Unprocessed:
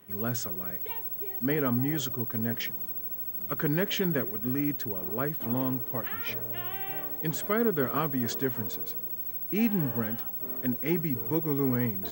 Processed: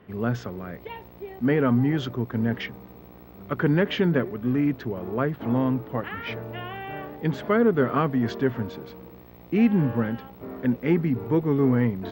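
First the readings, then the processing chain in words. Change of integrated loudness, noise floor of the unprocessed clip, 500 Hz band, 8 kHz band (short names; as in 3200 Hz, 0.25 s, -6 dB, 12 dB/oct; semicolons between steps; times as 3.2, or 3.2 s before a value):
+4.0 dB, -39 dBFS, +7.0 dB, under -10 dB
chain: air absorption 300 m; gain +7.5 dB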